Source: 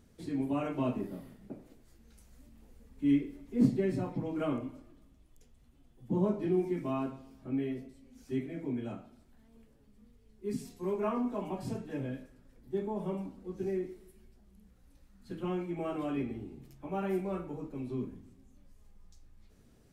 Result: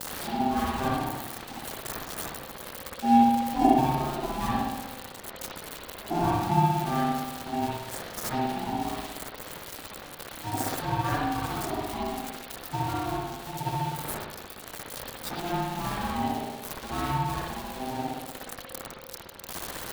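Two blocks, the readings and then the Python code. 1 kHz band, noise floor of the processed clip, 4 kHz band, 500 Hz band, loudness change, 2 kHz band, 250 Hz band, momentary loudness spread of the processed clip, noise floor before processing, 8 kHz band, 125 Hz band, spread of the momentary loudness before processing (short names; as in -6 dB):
+18.0 dB, -44 dBFS, +19.5 dB, +1.0 dB, +5.0 dB, +14.0 dB, +3.5 dB, 15 LU, -63 dBFS, +22.0 dB, +7.0 dB, 16 LU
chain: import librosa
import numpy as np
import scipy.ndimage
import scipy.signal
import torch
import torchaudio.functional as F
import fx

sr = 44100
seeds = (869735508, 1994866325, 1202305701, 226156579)

p1 = x + 0.5 * 10.0 ** (-23.0 / 20.0) * np.diff(np.sign(x), prepend=np.sign(x[:1]))
p2 = fx.dereverb_blind(p1, sr, rt60_s=1.8)
p3 = fx.peak_eq(p2, sr, hz=3700.0, db=6.5, octaves=0.56)
p4 = fx.sample_hold(p3, sr, seeds[0], rate_hz=2500.0, jitter_pct=0)
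p5 = p3 + F.gain(torch.from_numpy(p4), -5.0).numpy()
p6 = fx.rev_spring(p5, sr, rt60_s=1.1, pass_ms=(60,), chirp_ms=45, drr_db=-5.0)
y = p6 * np.sin(2.0 * np.pi * 520.0 * np.arange(len(p6)) / sr)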